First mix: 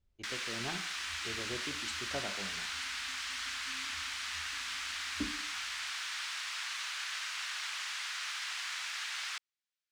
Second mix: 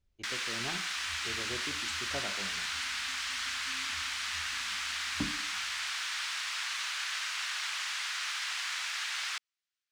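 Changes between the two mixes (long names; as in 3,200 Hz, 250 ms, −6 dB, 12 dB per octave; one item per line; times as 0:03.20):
first sound +3.5 dB
second sound: remove phaser with its sweep stopped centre 360 Hz, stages 4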